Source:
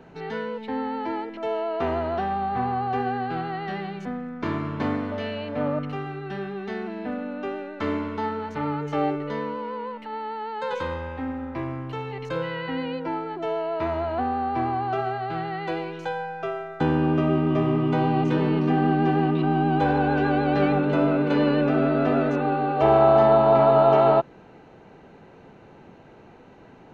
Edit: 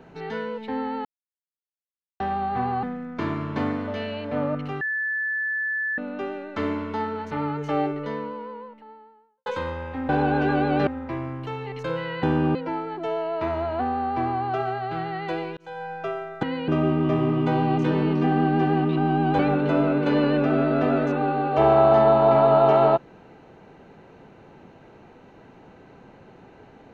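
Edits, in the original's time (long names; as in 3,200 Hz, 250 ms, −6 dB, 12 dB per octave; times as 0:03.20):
0:01.05–0:02.20: silence
0:02.83–0:04.07: remove
0:06.05–0:07.22: beep over 1,740 Hz −23.5 dBFS
0:09.04–0:10.70: fade out and dull
0:12.69–0:12.94: swap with 0:16.82–0:17.14
0:15.96–0:16.32: fade in
0:19.85–0:20.63: move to 0:11.33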